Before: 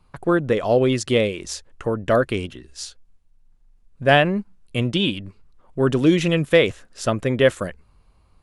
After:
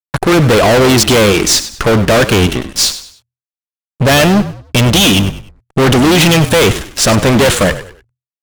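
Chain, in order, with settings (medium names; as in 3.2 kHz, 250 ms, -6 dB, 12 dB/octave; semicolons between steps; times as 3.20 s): dynamic bell 3.7 kHz, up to +6 dB, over -37 dBFS, Q 1.1; fuzz box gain 34 dB, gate -43 dBFS; frequency-shifting echo 99 ms, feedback 33%, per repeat -42 Hz, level -13 dB; trim +6 dB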